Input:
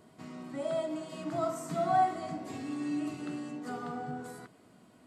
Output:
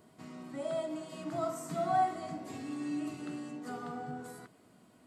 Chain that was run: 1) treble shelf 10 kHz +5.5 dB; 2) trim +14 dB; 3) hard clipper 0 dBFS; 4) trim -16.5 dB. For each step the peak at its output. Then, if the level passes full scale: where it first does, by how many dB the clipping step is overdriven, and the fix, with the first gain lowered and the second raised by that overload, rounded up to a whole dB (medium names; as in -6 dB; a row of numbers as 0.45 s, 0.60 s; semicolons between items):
-17.0 dBFS, -3.0 dBFS, -3.0 dBFS, -19.5 dBFS; nothing clips